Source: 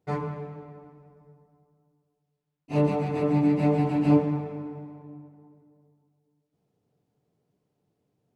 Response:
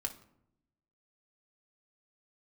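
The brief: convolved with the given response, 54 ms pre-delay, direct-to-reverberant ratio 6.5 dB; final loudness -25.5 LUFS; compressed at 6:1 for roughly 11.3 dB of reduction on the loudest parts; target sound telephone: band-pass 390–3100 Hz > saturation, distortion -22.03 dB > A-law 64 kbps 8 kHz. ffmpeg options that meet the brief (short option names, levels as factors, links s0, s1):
-filter_complex "[0:a]acompressor=threshold=0.0447:ratio=6,asplit=2[s0][s1];[1:a]atrim=start_sample=2205,adelay=54[s2];[s1][s2]afir=irnorm=-1:irlink=0,volume=0.473[s3];[s0][s3]amix=inputs=2:normalize=0,highpass=390,lowpass=3100,asoftclip=threshold=0.0596,volume=3.76" -ar 8000 -c:a pcm_alaw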